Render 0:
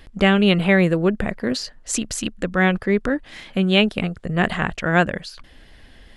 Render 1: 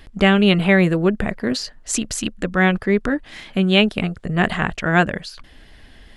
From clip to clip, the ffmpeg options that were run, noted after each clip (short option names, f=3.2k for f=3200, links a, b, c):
-af "bandreject=f=520:w=12,volume=1.5dB"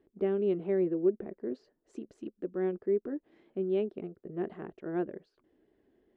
-af "bandpass=f=370:t=q:w=4.4:csg=0,volume=-6dB"